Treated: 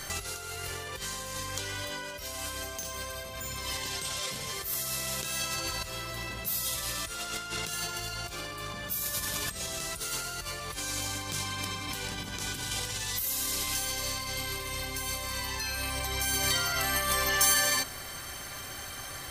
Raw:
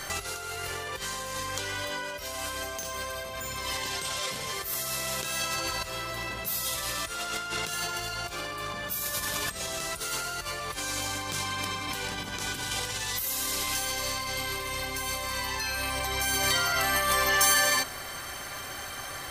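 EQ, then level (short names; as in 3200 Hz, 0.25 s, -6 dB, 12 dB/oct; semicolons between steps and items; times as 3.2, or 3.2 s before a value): low shelf 370 Hz +9 dB; high shelf 2200 Hz +7.5 dB; -7.5 dB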